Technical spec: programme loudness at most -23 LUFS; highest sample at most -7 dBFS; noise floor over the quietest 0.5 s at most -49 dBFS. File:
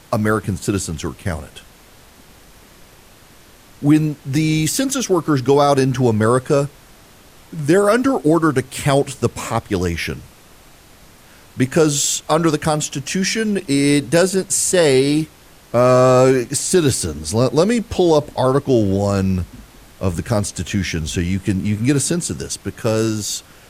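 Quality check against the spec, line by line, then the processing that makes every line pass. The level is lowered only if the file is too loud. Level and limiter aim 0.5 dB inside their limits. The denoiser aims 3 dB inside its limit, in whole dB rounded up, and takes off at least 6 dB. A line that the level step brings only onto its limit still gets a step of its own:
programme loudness -17.5 LUFS: fail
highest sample -3.5 dBFS: fail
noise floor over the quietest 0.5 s -46 dBFS: fail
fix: gain -6 dB

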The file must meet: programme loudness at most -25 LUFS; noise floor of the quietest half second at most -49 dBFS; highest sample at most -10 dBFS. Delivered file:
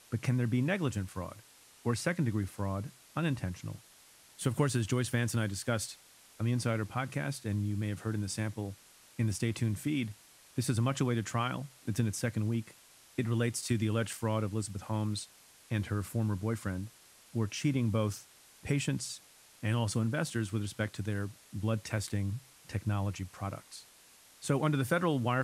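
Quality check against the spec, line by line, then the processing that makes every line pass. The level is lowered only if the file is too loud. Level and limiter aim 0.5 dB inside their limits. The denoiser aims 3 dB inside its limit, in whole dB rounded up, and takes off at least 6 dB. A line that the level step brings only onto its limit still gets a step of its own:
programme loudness -34.0 LUFS: OK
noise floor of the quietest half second -59 dBFS: OK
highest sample -16.5 dBFS: OK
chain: none

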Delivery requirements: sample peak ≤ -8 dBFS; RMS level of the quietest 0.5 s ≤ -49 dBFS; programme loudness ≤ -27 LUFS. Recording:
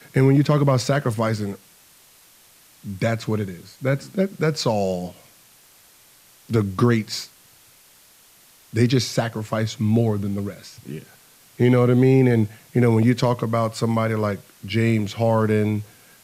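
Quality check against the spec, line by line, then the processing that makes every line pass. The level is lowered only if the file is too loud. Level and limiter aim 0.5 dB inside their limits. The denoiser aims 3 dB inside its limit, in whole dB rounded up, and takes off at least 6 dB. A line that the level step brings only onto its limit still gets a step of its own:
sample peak -6.0 dBFS: fail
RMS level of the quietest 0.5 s -53 dBFS: OK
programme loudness -21.0 LUFS: fail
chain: gain -6.5 dB

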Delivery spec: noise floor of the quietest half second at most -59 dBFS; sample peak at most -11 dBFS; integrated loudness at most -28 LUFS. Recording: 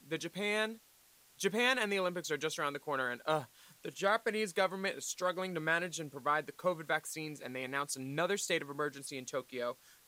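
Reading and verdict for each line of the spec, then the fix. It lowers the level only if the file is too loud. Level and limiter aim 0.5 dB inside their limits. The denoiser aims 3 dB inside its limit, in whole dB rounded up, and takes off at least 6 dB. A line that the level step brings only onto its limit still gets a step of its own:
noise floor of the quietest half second -65 dBFS: OK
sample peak -16.0 dBFS: OK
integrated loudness -35.5 LUFS: OK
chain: none

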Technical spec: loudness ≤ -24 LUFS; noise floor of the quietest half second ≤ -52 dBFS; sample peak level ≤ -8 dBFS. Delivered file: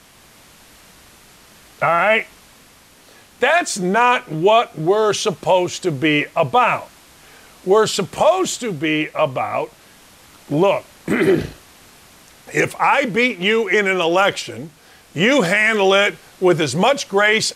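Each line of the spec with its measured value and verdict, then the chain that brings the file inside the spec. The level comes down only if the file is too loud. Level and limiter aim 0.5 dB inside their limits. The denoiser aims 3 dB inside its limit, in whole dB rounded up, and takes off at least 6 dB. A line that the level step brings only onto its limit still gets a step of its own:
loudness -17.0 LUFS: fail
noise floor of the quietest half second -48 dBFS: fail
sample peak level -4.5 dBFS: fail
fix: gain -7.5 dB

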